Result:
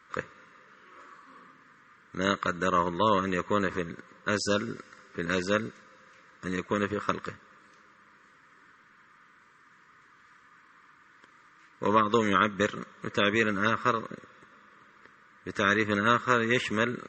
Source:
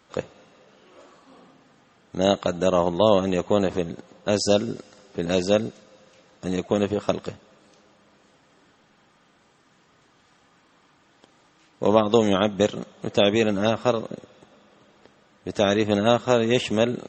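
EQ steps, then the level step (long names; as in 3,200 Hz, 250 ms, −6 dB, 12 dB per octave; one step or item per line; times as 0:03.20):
Butterworth band-reject 760 Hz, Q 1.4
flat-topped bell 1,300 Hz +13.5 dB
−6.5 dB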